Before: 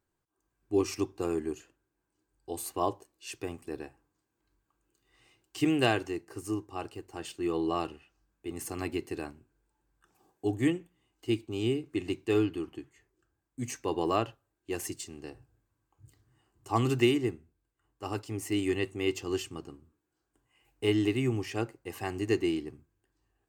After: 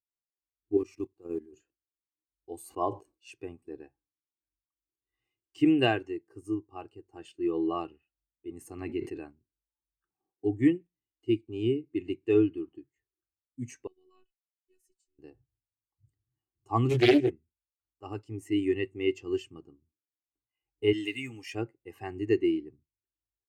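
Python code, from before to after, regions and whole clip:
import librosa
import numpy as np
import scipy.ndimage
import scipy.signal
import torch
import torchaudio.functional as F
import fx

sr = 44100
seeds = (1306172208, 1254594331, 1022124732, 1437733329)

y = fx.chain(x, sr, fx.block_float(bits=5),
    fx.dynamic_eq(hz=5200.0, q=5.3, threshold_db=-53.0, ratio=4.0, max_db=-4),
    fx.level_steps(step_db=15), at=(0.77, 1.53))
y = fx.chain(y, sr, fx.notch(hz=1800.0, q=13.0),
    fx.sustainer(db_per_s=140.0), at=(2.63, 3.34))
y = fx.chain(y, sr, fx.high_shelf(hz=6900.0, db=-4.5),
    fx.sustainer(db_per_s=83.0), at=(8.78, 9.22))
y = fx.chain(y, sr, fx.tone_stack(knobs='6-0-2'),
    fx.robotise(hz=370.0), at=(13.87, 15.19))
y = fx.chain(y, sr, fx.high_shelf(hz=3200.0, db=8.5),
    fx.doubler(ms=24.0, db=-3),
    fx.doppler_dist(depth_ms=0.55), at=(16.89, 17.3))
y = fx.chain(y, sr, fx.tilt_eq(slope=3.5),
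    fx.notch_comb(f0_hz=370.0), at=(20.93, 21.55))
y = fx.dynamic_eq(y, sr, hz=2200.0, q=1.7, threshold_db=-52.0, ratio=4.0, max_db=4)
y = fx.spectral_expand(y, sr, expansion=1.5)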